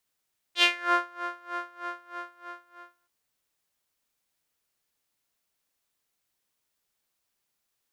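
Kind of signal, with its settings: synth patch with tremolo F4, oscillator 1 saw, oscillator 2 triangle, interval +7 st, oscillator 2 level -14 dB, sub -30 dB, filter bandpass, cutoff 1.3 kHz, Q 3.8, filter envelope 1.5 oct, filter decay 0.35 s, filter sustain 0%, attack 75 ms, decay 0.52 s, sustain -16 dB, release 1.48 s, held 1.05 s, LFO 3.2 Hz, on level 22 dB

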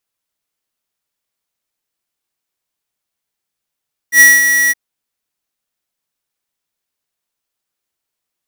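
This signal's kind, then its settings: ADSR square 1.93 kHz, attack 84 ms, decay 204 ms, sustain -8 dB, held 0.59 s, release 27 ms -4 dBFS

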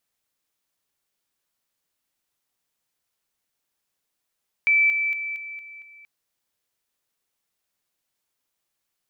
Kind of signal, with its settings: level ladder 2.32 kHz -15 dBFS, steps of -6 dB, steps 6, 0.23 s 0.00 s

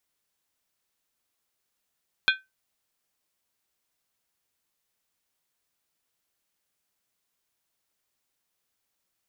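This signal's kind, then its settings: skin hit, lowest mode 1.54 kHz, decay 0.20 s, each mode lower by 2.5 dB, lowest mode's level -15.5 dB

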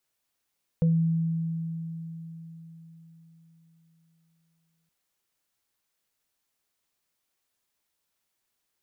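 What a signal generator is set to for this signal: sine partials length 4.07 s, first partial 164 Hz, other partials 495 Hz, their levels -10 dB, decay 4.38 s, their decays 0.24 s, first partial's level -18 dB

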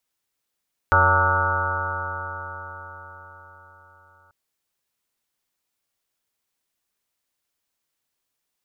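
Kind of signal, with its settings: stretched partials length 3.39 s, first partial 88.9 Hz, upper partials -18.5/-19/-14/-12.5/-4/-12/-9.5/1/-18/-1/1.5/3/-17 dB, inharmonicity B 0.0034, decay 4.86 s, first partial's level -20.5 dB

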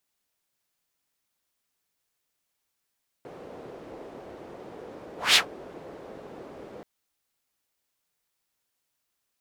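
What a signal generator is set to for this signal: whoosh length 3.58 s, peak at 2.10 s, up 0.19 s, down 0.12 s, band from 460 Hz, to 3.6 kHz, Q 1.8, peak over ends 26.5 dB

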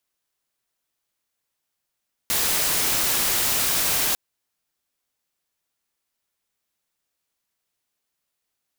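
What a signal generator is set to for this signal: noise white, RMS -22 dBFS 1.85 s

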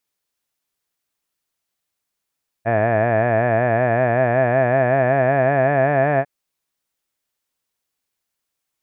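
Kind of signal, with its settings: formant-synthesis vowel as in had, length 3.60 s, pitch 110 Hz, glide +4.5 st, vibrato depth 1.05 st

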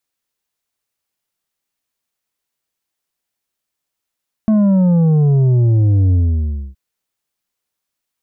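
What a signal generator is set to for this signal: sub drop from 220 Hz, over 2.27 s, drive 6.5 dB, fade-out 0.62 s, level -10 dB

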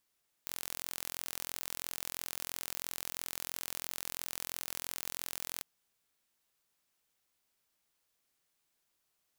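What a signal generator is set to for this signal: pulse train 43 per s, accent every 0, -11.5 dBFS 5.16 s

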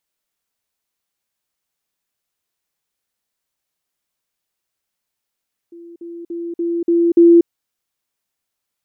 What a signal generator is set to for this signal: level ladder 340 Hz -35 dBFS, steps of 6 dB, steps 6, 0.24 s 0.05 s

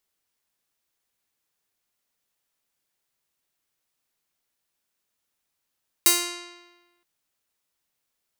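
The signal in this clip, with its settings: plucked string F4, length 0.97 s, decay 1.24 s, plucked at 0.41, bright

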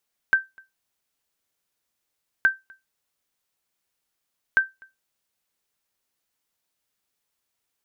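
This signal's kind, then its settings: sonar ping 1.56 kHz, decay 0.19 s, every 2.12 s, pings 3, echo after 0.25 s, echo -29.5 dB -9.5 dBFS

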